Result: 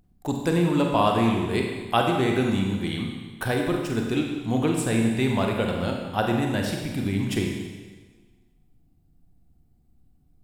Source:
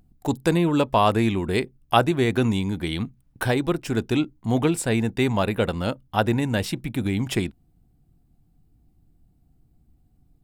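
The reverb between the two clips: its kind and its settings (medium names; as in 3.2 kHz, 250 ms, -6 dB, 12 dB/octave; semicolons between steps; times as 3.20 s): Schroeder reverb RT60 1.4 s, combs from 31 ms, DRR 1 dB; trim -4 dB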